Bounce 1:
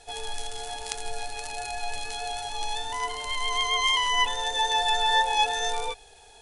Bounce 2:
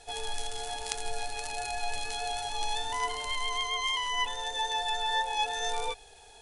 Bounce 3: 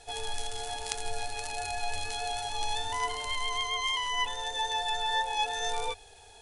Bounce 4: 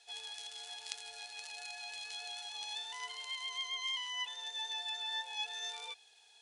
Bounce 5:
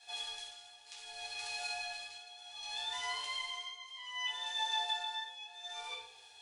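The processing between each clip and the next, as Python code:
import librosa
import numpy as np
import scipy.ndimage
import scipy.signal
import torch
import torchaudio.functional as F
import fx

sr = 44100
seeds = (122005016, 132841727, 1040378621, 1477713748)

y1 = fx.rider(x, sr, range_db=3, speed_s=0.5)
y1 = y1 * librosa.db_to_amplitude(-4.0)
y2 = fx.peak_eq(y1, sr, hz=88.0, db=9.0, octaves=0.3)
y3 = fx.bandpass_q(y2, sr, hz=3700.0, q=0.9)
y3 = y3 * librosa.db_to_amplitude(-5.0)
y4 = fx.room_shoebox(y3, sr, seeds[0], volume_m3=800.0, walls='furnished', distance_m=8.5)
y4 = y4 * (1.0 - 0.84 / 2.0 + 0.84 / 2.0 * np.cos(2.0 * np.pi * 0.64 * (np.arange(len(y4)) / sr)))
y4 = y4 * librosa.db_to_amplitude(-3.5)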